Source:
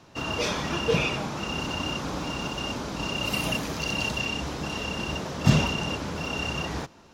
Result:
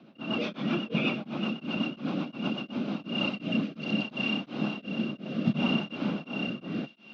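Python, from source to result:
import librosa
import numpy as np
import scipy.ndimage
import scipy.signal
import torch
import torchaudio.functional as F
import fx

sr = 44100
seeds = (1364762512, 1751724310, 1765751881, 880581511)

p1 = fx.low_shelf(x, sr, hz=420.0, db=5.0)
p2 = fx.rotary_switch(p1, sr, hz=8.0, then_hz=0.65, switch_at_s=2.48)
p3 = fx.cabinet(p2, sr, low_hz=180.0, low_slope=24, high_hz=3500.0, hz=(220.0, 440.0, 950.0, 1800.0), db=(7, -7, -8, -9))
p4 = p3 + fx.echo_wet_highpass(p3, sr, ms=353, feedback_pct=83, hz=2300.0, wet_db=-16.0, dry=0)
p5 = p4 * np.abs(np.cos(np.pi * 2.8 * np.arange(len(p4)) / sr))
y = p5 * 10.0 ** (2.0 / 20.0)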